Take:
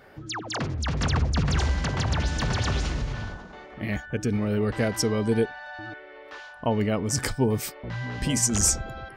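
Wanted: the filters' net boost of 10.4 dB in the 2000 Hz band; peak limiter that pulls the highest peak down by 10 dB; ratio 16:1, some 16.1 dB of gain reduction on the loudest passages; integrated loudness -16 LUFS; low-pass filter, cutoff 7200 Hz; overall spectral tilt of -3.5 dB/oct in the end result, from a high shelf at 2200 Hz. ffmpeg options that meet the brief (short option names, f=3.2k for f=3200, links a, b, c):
-af "lowpass=7.2k,equalizer=f=2k:t=o:g=9,highshelf=f=2.2k:g=8,acompressor=threshold=-29dB:ratio=16,volume=18dB,alimiter=limit=-6.5dB:level=0:latency=1"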